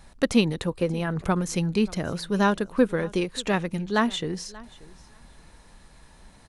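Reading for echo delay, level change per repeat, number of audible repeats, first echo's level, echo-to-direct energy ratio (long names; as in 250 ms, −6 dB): 583 ms, repeats not evenly spaced, 1, −21.5 dB, −21.5 dB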